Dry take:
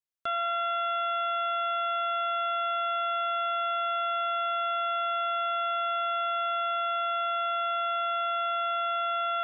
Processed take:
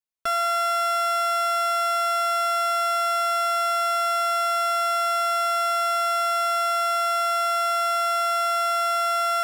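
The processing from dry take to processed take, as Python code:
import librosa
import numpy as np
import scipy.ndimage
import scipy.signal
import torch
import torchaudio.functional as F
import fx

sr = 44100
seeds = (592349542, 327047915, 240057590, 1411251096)

p1 = x + 0.77 * np.pad(x, (int(4.6 * sr / 1000.0), 0))[:len(x)]
p2 = fx.fuzz(p1, sr, gain_db=50.0, gate_db=-57.0)
p3 = p1 + F.gain(torch.from_numpy(p2), -10.0).numpy()
y = F.gain(torch.from_numpy(p3), -3.5).numpy()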